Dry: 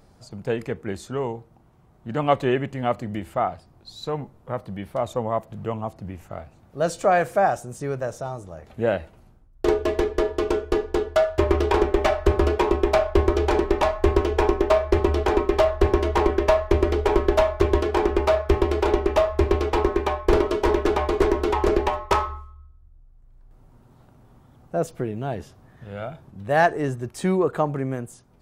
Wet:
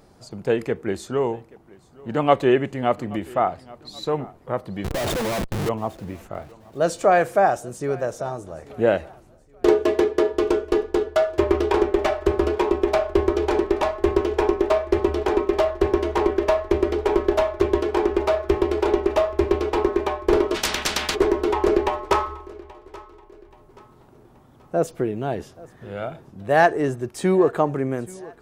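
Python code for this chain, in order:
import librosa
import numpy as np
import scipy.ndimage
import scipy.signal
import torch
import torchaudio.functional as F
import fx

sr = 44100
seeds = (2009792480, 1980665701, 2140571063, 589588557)

y = fx.low_shelf(x, sr, hz=140.0, db=-6.5)
y = fx.schmitt(y, sr, flips_db=-42.0, at=(4.84, 5.69))
y = fx.peak_eq(y, sr, hz=360.0, db=4.0, octaves=0.8)
y = fx.echo_feedback(y, sr, ms=829, feedback_pct=38, wet_db=-22.5)
y = fx.rider(y, sr, range_db=3, speed_s=2.0)
y = fx.highpass(y, sr, hz=89.0, slope=12, at=(9.68, 10.34))
y = fx.spectral_comp(y, sr, ratio=10.0, at=(20.54, 21.14), fade=0.02)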